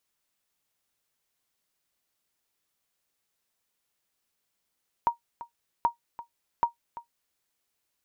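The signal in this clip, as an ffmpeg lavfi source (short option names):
-f lavfi -i "aevalsrc='0.2*(sin(2*PI*941*mod(t,0.78))*exp(-6.91*mod(t,0.78)/0.12)+0.15*sin(2*PI*941*max(mod(t,0.78)-0.34,0))*exp(-6.91*max(mod(t,0.78)-0.34,0)/0.12))':d=2.34:s=44100"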